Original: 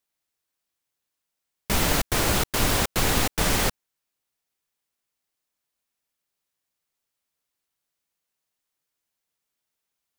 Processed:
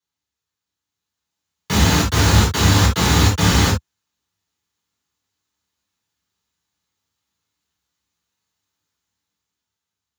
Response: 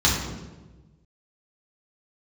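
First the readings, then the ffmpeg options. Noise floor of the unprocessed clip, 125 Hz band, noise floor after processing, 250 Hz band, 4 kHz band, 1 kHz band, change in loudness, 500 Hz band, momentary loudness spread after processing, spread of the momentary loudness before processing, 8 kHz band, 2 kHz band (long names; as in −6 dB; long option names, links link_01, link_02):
−83 dBFS, +14.5 dB, −85 dBFS, +10.0 dB, +7.0 dB, +6.5 dB, +7.5 dB, +4.0 dB, 4 LU, 2 LU, +4.5 dB, +5.5 dB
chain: -filter_complex "[0:a]highpass=frequency=75:width=0.5412,highpass=frequency=75:width=1.3066,dynaudnorm=framelen=280:gausssize=9:maxgain=7dB[link_01];[1:a]atrim=start_sample=2205,atrim=end_sample=3528[link_02];[link_01][link_02]afir=irnorm=-1:irlink=0,volume=-16.5dB"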